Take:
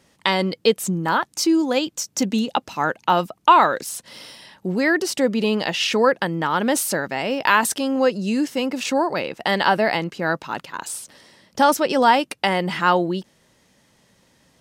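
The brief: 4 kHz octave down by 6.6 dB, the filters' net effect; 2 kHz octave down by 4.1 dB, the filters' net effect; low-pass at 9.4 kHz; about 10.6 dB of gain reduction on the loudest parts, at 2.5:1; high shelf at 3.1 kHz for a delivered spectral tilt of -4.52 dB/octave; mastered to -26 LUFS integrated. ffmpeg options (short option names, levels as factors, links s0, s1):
-af "lowpass=9400,equalizer=f=2000:t=o:g=-3,highshelf=f=3100:g=-4.5,equalizer=f=4000:t=o:g=-4.5,acompressor=threshold=0.0447:ratio=2.5,volume=1.41"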